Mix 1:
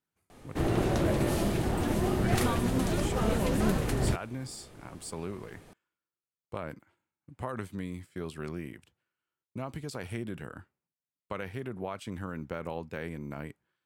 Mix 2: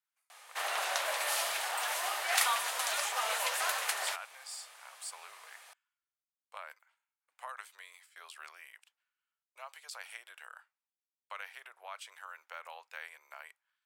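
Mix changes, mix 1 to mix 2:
background +7.0 dB; master: add Bessel high-pass 1200 Hz, order 8

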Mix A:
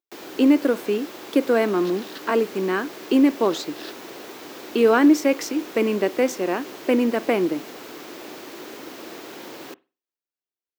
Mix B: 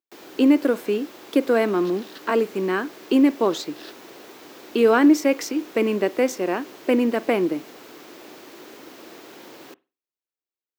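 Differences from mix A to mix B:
first sound -5.0 dB; second sound -3.5 dB

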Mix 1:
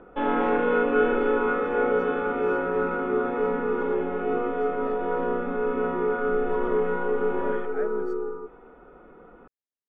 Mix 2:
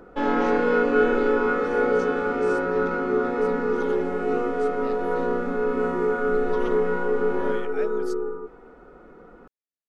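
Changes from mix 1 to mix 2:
speech: remove polynomial smoothing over 41 samples; background: remove rippled Chebyshev low-pass 3600 Hz, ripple 3 dB

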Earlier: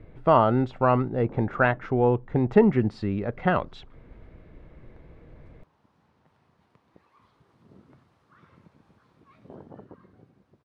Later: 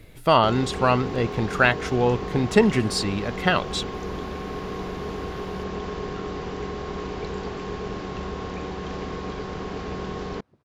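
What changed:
speech: remove LPF 1300 Hz 12 dB/oct; first sound: unmuted

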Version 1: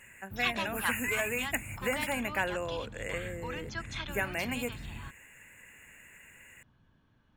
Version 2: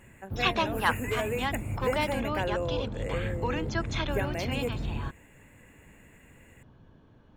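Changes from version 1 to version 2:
background +10.5 dB; master: add EQ curve 230 Hz 0 dB, 450 Hz +6 dB, 1600 Hz -6 dB

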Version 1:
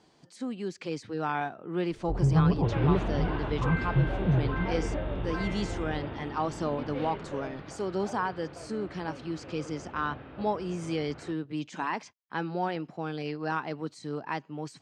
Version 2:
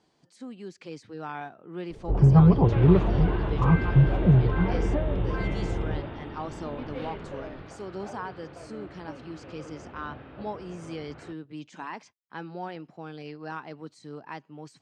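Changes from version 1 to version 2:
speech -6.0 dB; first sound +7.0 dB

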